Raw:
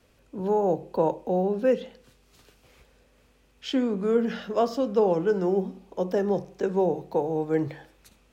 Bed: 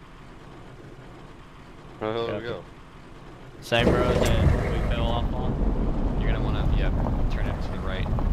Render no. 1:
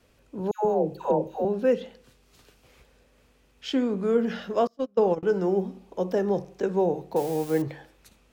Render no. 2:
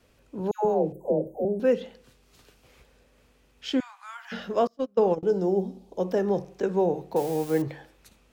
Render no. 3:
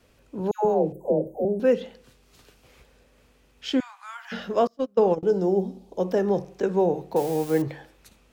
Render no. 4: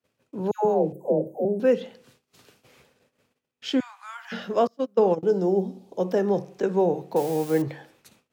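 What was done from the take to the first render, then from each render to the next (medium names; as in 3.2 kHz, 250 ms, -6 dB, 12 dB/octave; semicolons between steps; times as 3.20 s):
0.51–1.45 s: phase dispersion lows, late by 141 ms, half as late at 890 Hz; 4.67–5.23 s: gate -24 dBFS, range -30 dB; 7.16–7.62 s: zero-crossing glitches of -28.5 dBFS
0.92–1.60 s: Chebyshev band-stop 670–8300 Hz, order 4; 3.80–4.32 s: steep high-pass 800 Hz 72 dB/octave; 5.16–6.00 s: high-order bell 1.7 kHz -10 dB
trim +2 dB
high-pass 100 Hz 24 dB/octave; gate -59 dBFS, range -24 dB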